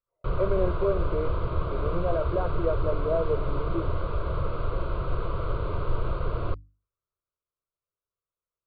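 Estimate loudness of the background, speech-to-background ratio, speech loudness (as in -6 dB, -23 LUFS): -31.5 LUFS, 1.0 dB, -30.5 LUFS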